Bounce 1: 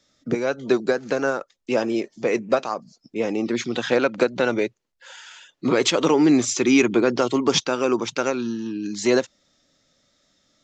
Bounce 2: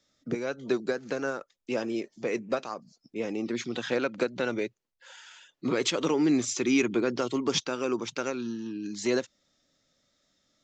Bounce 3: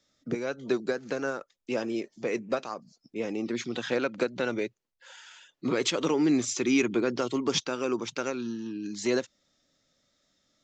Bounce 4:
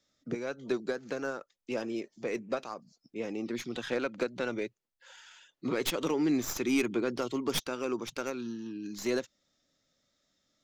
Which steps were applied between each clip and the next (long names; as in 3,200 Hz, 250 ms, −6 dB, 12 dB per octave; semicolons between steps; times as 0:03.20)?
dynamic equaliser 770 Hz, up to −4 dB, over −31 dBFS, Q 1.2; level −7 dB
no processing that can be heard
stylus tracing distortion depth 0.093 ms; level −4 dB